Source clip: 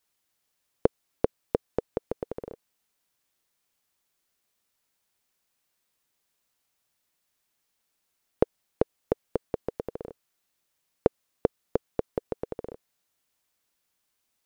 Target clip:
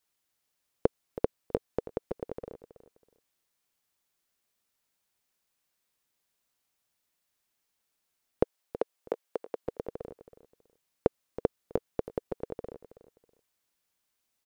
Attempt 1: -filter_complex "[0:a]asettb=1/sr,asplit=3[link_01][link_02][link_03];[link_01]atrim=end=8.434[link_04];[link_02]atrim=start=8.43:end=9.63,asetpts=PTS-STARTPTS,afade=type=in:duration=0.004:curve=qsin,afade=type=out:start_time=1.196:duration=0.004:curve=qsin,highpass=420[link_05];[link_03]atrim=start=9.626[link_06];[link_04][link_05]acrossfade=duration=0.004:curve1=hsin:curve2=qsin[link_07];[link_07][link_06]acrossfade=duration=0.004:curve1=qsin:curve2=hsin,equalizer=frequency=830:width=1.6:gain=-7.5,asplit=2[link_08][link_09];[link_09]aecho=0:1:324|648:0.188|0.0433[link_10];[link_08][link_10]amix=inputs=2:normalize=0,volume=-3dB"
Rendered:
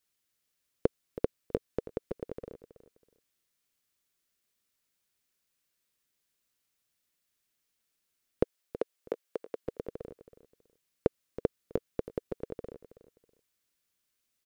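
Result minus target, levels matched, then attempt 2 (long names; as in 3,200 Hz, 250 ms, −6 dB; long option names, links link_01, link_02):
1,000 Hz band −4.5 dB
-filter_complex "[0:a]asettb=1/sr,asplit=3[link_01][link_02][link_03];[link_01]atrim=end=8.434[link_04];[link_02]atrim=start=8.43:end=9.63,asetpts=PTS-STARTPTS,afade=type=in:duration=0.004:curve=qsin,afade=type=out:start_time=1.196:duration=0.004:curve=qsin,highpass=420[link_05];[link_03]atrim=start=9.626[link_06];[link_04][link_05]acrossfade=duration=0.004:curve1=hsin:curve2=qsin[link_07];[link_07][link_06]acrossfade=duration=0.004:curve1=qsin:curve2=hsin,asplit=2[link_08][link_09];[link_09]aecho=0:1:324|648:0.188|0.0433[link_10];[link_08][link_10]amix=inputs=2:normalize=0,volume=-3dB"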